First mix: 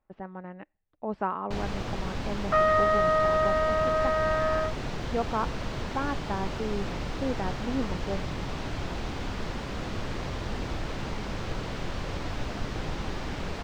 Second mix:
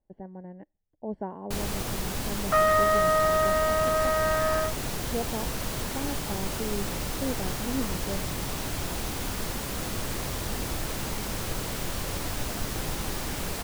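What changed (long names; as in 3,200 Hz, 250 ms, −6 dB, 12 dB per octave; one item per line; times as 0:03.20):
speech: add moving average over 35 samples
master: remove high-frequency loss of the air 170 metres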